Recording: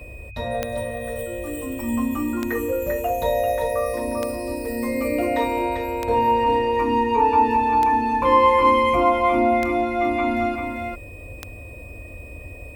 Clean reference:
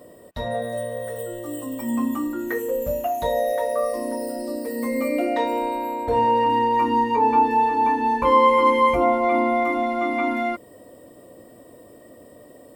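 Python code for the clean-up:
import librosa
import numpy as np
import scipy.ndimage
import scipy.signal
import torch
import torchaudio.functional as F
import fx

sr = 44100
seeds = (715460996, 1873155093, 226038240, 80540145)

y = fx.fix_declick_ar(x, sr, threshold=10.0)
y = fx.notch(y, sr, hz=2500.0, q=30.0)
y = fx.noise_reduce(y, sr, print_start_s=11.64, print_end_s=12.14, reduce_db=10.0)
y = fx.fix_echo_inverse(y, sr, delay_ms=394, level_db=-5.5)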